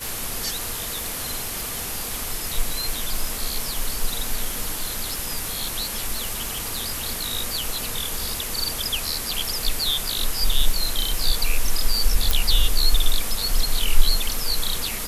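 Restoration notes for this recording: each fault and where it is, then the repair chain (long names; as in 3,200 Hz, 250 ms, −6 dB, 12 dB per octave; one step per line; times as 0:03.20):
surface crackle 56 per second −28 dBFS
0:12.31: click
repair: click removal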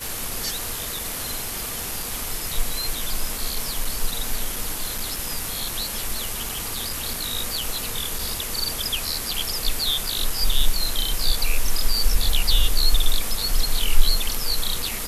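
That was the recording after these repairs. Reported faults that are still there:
0:12.31: click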